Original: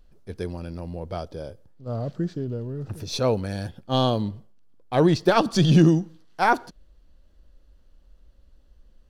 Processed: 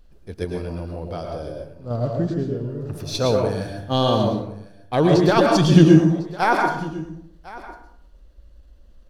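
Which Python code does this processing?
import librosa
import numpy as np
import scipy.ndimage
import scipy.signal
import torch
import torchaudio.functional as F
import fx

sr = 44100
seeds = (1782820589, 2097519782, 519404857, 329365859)

p1 = fx.level_steps(x, sr, step_db=14)
p2 = x + (p1 * 10.0 ** (1.5 / 20.0))
p3 = p2 + 10.0 ** (-19.0 / 20.0) * np.pad(p2, (int(1052 * sr / 1000.0), 0))[:len(p2)]
p4 = fx.rev_plate(p3, sr, seeds[0], rt60_s=0.67, hf_ratio=0.6, predelay_ms=95, drr_db=1.0)
y = p4 * 10.0 ** (-2.0 / 20.0)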